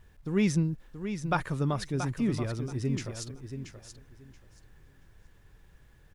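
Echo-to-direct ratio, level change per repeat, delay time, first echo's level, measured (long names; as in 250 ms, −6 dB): −9.0 dB, −14.5 dB, 679 ms, −9.0 dB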